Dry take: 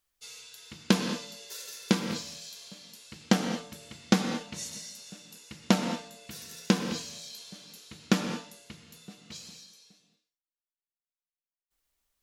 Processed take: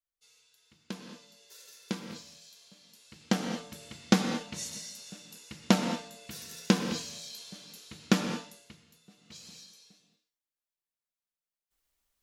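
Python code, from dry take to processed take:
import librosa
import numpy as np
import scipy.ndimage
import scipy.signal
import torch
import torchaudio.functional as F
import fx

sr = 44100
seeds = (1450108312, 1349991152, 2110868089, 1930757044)

y = fx.gain(x, sr, db=fx.line((0.94, -17.0), (1.66, -10.0), (2.71, -10.0), (3.8, 0.0), (8.42, 0.0), (9.03, -12.0), (9.59, -0.5)))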